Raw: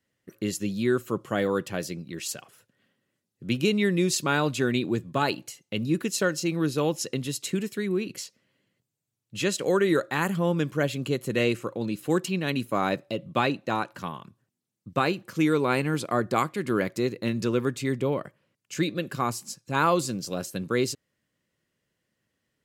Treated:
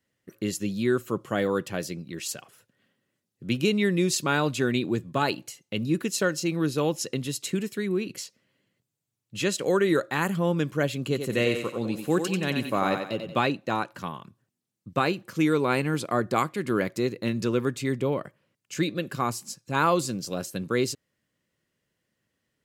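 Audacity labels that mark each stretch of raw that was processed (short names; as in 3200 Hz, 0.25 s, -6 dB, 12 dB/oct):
11.010000	13.380000	thinning echo 91 ms, feedback 41%, high-pass 220 Hz, level -6 dB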